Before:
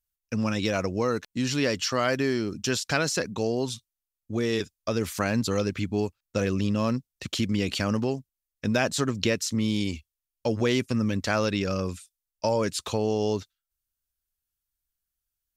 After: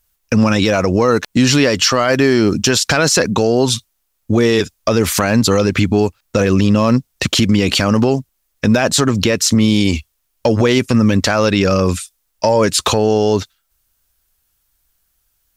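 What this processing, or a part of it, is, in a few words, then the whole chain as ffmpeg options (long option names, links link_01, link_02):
mastering chain: -af "equalizer=frequency=880:width_type=o:width=1.9:gain=3,acompressor=threshold=-28dB:ratio=2.5,asoftclip=type=tanh:threshold=-14dB,asoftclip=type=hard:threshold=-17.5dB,alimiter=level_in=22.5dB:limit=-1dB:release=50:level=0:latency=1,volume=-2.5dB"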